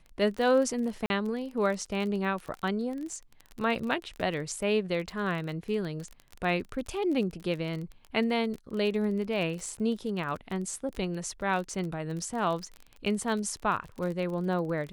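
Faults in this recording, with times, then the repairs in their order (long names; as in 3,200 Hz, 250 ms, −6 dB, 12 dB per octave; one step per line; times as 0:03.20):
surface crackle 30 per second −34 dBFS
0:01.06–0:01.10: drop-out 41 ms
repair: click removal
repair the gap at 0:01.06, 41 ms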